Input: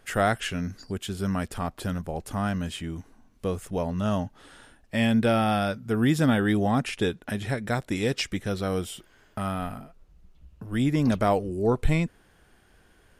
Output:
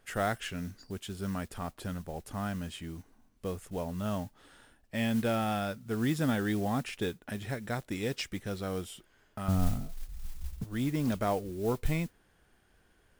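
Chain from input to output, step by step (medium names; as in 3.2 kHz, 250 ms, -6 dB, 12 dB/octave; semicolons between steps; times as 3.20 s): 9.48–10.64 s: tilt EQ -4.5 dB/octave; modulation noise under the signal 21 dB; trim -7.5 dB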